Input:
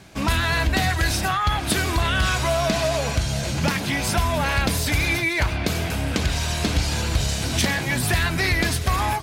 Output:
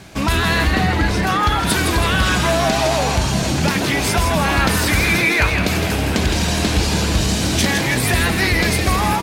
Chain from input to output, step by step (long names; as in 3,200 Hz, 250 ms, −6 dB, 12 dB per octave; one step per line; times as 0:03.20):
0:00.71–0:01.27: low-pass filter 2,000 Hz 6 dB per octave
in parallel at +1 dB: brickwall limiter −20.5 dBFS, peak gain reduction 10.5 dB
0:04.59–0:05.50: on the sum: parametric band 1,400 Hz +6 dB 0.77 octaves
on a send: echo with shifted repeats 162 ms, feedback 51%, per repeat +120 Hz, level −6 dB
on the sum: bit reduction 12 bits